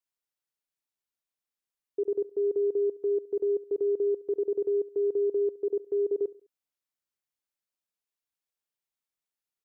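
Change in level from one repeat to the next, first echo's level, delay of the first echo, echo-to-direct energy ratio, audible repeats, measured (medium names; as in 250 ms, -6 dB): -7.5 dB, -20.0 dB, 69 ms, -19.0 dB, 2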